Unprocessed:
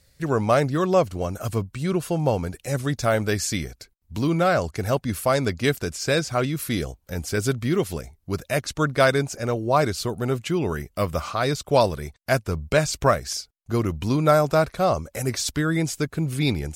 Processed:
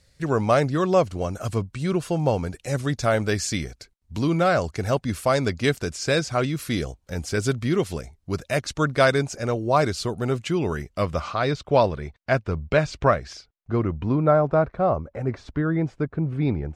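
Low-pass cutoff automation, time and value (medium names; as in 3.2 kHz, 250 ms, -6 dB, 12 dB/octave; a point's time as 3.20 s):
10.68 s 8.6 kHz
11.70 s 3.2 kHz
13.25 s 3.2 kHz
14.28 s 1.3 kHz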